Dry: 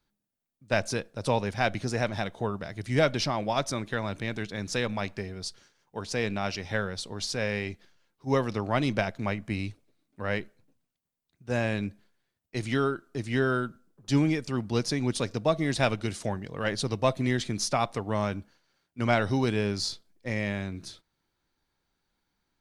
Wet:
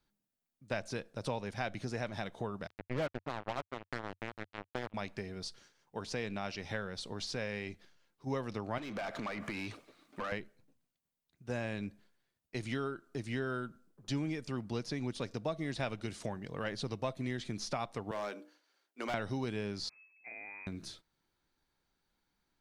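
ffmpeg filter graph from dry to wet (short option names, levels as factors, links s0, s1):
-filter_complex "[0:a]asettb=1/sr,asplit=3[s0][s1][s2];[s0]atrim=end=2.674[s3];[s1]atrim=start=2.67:end=4.94,asetpts=PTS-STARTPTS,afade=t=in:d=0.004:c=qsin,afade=t=out:st=2.266:d=0.004:c=qsin,lowpass=1500,acrusher=bits=3:mix=0:aa=0.5[s4];[s2]atrim=start=4.936[s5];[s3][s4]acrossfade=d=0.004:c1=hsin:c2=qsin[s6];[s6][s5]acrossfade=d=0.004:c1=qsin:c2=hsin,asettb=1/sr,asplit=3[s7][s8][s9];[s7]atrim=end=8.784[s10];[s8]atrim=start=8.78:end=10.32,asetpts=PTS-STARTPTS,afade=t=in:d=0.004:c=qsin,afade=t=out:st=1.536:d=0.004:c=qsin,equalizer=f=1200:t=o:w=0.21:g=7,acompressor=threshold=0.0126:ratio=8:attack=3.2:release=140:knee=1:detection=peak,asplit=2[s11][s12];[s12]highpass=f=720:p=1,volume=22.4,asoftclip=type=tanh:threshold=0.0596[s13];[s11][s13]amix=inputs=2:normalize=0,lowpass=f=2900:p=1,volume=0.501[s14];[s9]atrim=start=10.316[s15];[s10][s14]acrossfade=d=0.004:c1=hsin:c2=qsin[s16];[s16][s15]acrossfade=d=0.004:c1=qsin:c2=hsin,asettb=1/sr,asplit=3[s17][s18][s19];[s17]atrim=end=18.114[s20];[s18]atrim=start=18.11:end=19.14,asetpts=PTS-STARTPTS,afade=t=in:d=0.004:c=qsin,afade=t=out:st=1.026:d=0.004:c=qsin,highpass=f=300:w=0.5412,highpass=f=300:w=1.3066,bandreject=f=60:t=h:w=6,bandreject=f=120:t=h:w=6,bandreject=f=180:t=h:w=6,bandreject=f=240:t=h:w=6,bandreject=f=300:t=h:w=6,bandreject=f=360:t=h:w=6,bandreject=f=420:t=h:w=6,bandreject=f=480:t=h:w=6,bandreject=f=540:t=h:w=6,bandreject=f=600:t=h:w=6,volume=21.1,asoftclip=hard,volume=0.0473[s21];[s19]atrim=start=19.136[s22];[s20][s21]acrossfade=d=0.004:c1=hsin:c2=qsin[s23];[s23][s22]acrossfade=d=0.004:c1=qsin:c2=hsin,asettb=1/sr,asplit=3[s24][s25][s26];[s24]atrim=end=19.894[s27];[s25]atrim=start=19.89:end=20.67,asetpts=PTS-STARTPTS,afade=t=in:d=0.004:c=qsin,afade=t=out:st=0.776:d=0.004:c=qsin,acompressor=threshold=0.00251:ratio=2:attack=3.2:release=140:knee=1:detection=peak,lowpass=f=2200:t=q:w=0.5098,lowpass=f=2200:t=q:w=0.6013,lowpass=f=2200:t=q:w=0.9,lowpass=f=2200:t=q:w=2.563,afreqshift=-2600[s28];[s26]atrim=start=20.666[s29];[s27][s28]acrossfade=d=0.004:c1=hsin:c2=qsin[s30];[s30][s29]acrossfade=d=0.004:c1=qsin:c2=hsin,acrossover=split=4800[s31][s32];[s32]acompressor=threshold=0.00631:ratio=4:attack=1:release=60[s33];[s31][s33]amix=inputs=2:normalize=0,equalizer=f=94:t=o:w=0.28:g=-4.5,acompressor=threshold=0.02:ratio=2.5,volume=0.75"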